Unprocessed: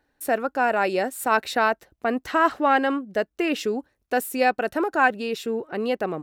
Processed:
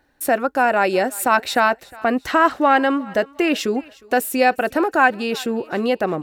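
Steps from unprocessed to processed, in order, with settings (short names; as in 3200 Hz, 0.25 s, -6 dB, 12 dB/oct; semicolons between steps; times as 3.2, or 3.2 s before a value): notch 440 Hz, Q 12; in parallel at -1.5 dB: compressor, threshold -27 dBFS, peak gain reduction 13.5 dB; on the sum: thinning echo 0.359 s, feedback 41%, high-pass 510 Hz, level -21.5 dB; gain +2.5 dB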